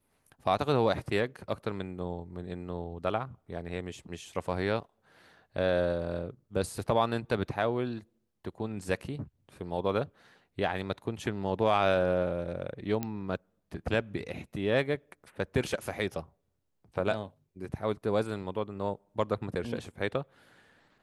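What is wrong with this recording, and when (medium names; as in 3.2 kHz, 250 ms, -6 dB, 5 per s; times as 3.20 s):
13.03 s: pop -18 dBFS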